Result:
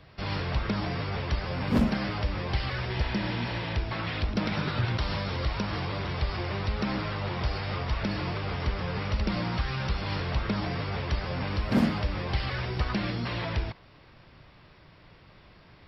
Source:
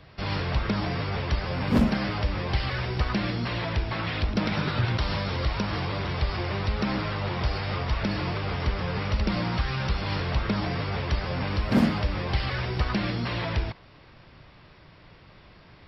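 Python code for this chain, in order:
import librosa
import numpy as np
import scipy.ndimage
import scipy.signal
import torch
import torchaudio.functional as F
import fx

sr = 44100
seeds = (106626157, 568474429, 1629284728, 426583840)

y = fx.spec_repair(x, sr, seeds[0], start_s=2.92, length_s=0.79, low_hz=660.0, high_hz=4300.0, source='after')
y = y * librosa.db_to_amplitude(-2.5)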